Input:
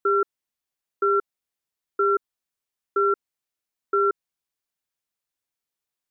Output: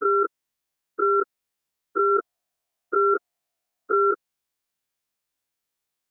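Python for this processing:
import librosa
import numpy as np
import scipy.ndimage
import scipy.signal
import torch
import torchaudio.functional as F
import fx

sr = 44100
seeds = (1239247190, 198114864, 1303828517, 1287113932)

y = fx.spec_dilate(x, sr, span_ms=60)
y = fx.peak_eq(y, sr, hz=690.0, db=13.5, octaves=0.36, at=(2.1, 4.1), fade=0.02)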